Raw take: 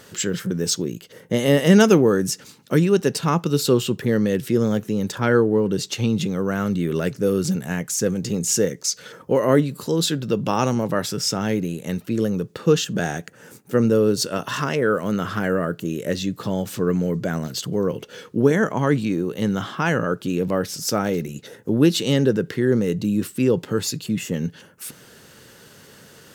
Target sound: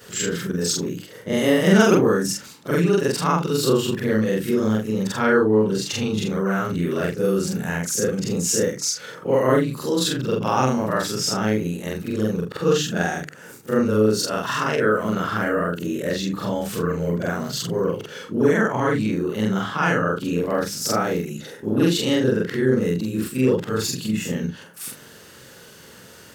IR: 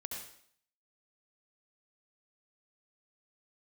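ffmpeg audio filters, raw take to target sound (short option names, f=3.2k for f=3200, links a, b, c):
-filter_complex "[0:a]afftfilt=real='re':imag='-im':win_size=4096:overlap=0.75,bandreject=f=50:t=h:w=6,bandreject=f=100:t=h:w=6,bandreject=f=150:t=h:w=6,bandreject=f=200:t=h:w=6,bandreject=f=250:t=h:w=6,bandreject=f=300:t=h:w=6,bandreject=f=350:t=h:w=6,adynamicequalizer=threshold=0.00794:dfrequency=1300:dqfactor=0.93:tfrequency=1300:tqfactor=0.93:attack=5:release=100:ratio=0.375:range=2:mode=boostabove:tftype=bell,asplit=2[a][b];[b]acompressor=threshold=-32dB:ratio=6,volume=-3dB[c];[a][c]amix=inputs=2:normalize=0,volume=2dB"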